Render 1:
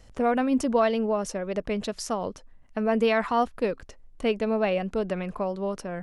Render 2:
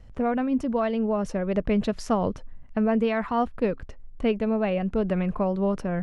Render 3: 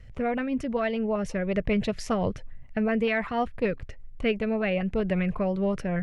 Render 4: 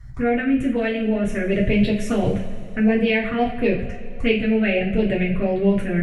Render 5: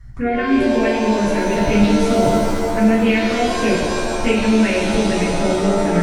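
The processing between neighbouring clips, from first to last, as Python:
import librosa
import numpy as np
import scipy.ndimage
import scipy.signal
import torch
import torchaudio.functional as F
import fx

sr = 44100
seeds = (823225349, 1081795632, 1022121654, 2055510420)

y1 = fx.bass_treble(x, sr, bass_db=8, treble_db=-11)
y1 = fx.rider(y1, sr, range_db=10, speed_s=0.5)
y1 = F.gain(torch.from_numpy(y1), -1.0).numpy()
y2 = fx.graphic_eq_10(y1, sr, hz=(125, 250, 1000, 2000), db=(5, -5, -3, 8))
y2 = fx.filter_lfo_notch(y2, sr, shape='saw_up', hz=5.2, low_hz=740.0, high_hz=1900.0, q=2.2)
y3 = fx.env_phaser(y2, sr, low_hz=440.0, high_hz=1300.0, full_db=-21.5)
y3 = fx.rev_double_slope(y3, sr, seeds[0], early_s=0.34, late_s=2.5, knee_db=-18, drr_db=-4.5)
y3 = F.gain(torch.from_numpy(y3), 3.5).numpy()
y4 = fx.rev_shimmer(y3, sr, seeds[1], rt60_s=2.2, semitones=7, shimmer_db=-2, drr_db=2.5)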